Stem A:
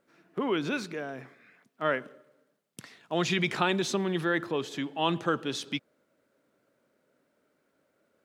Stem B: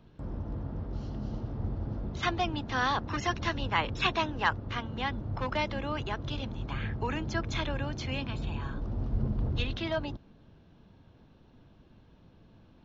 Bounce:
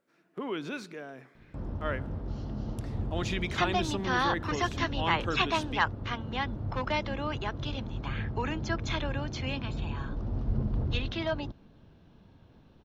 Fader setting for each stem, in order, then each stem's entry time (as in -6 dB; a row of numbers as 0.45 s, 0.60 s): -6.0 dB, +0.5 dB; 0.00 s, 1.35 s